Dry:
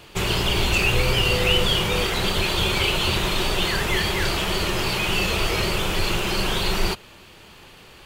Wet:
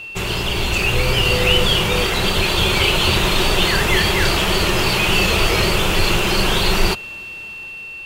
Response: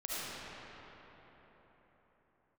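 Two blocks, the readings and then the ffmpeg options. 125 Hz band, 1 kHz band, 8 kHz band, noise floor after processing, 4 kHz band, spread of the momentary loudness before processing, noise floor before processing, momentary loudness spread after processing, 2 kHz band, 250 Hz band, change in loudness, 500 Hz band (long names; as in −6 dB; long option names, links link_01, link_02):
+4.5 dB, +5.5 dB, +5.0 dB, −33 dBFS, +5.0 dB, 4 LU, −47 dBFS, 9 LU, +5.5 dB, +5.0 dB, +5.0 dB, +5.0 dB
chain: -af "dynaudnorm=framelen=280:gausssize=7:maxgain=7dB,aeval=exprs='val(0)+0.0316*sin(2*PI*2700*n/s)':channel_layout=same"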